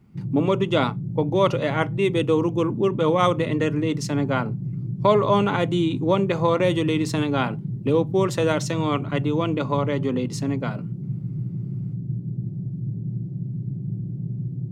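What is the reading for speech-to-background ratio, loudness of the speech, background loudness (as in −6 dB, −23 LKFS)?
7.5 dB, −23.0 LKFS, −30.5 LKFS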